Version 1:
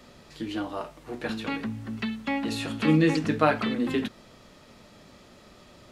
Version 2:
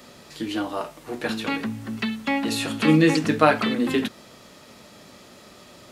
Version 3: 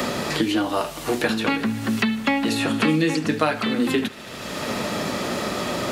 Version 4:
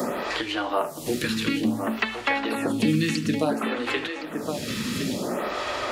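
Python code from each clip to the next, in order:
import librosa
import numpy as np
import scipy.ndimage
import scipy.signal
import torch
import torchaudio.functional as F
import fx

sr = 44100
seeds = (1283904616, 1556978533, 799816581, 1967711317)

y1 = fx.highpass(x, sr, hz=140.0, slope=6)
y1 = fx.high_shelf(y1, sr, hz=7600.0, db=8.5)
y1 = y1 * 10.0 ** (5.0 / 20.0)
y2 = fx.echo_thinned(y1, sr, ms=75, feedback_pct=84, hz=550.0, wet_db=-21.0)
y2 = fx.band_squash(y2, sr, depth_pct=100)
y2 = y2 * 10.0 ** (2.0 / 20.0)
y3 = y2 + 10.0 ** (-7.0 / 20.0) * np.pad(y2, (int(1064 * sr / 1000.0), 0))[:len(y2)]
y3 = fx.stagger_phaser(y3, sr, hz=0.57)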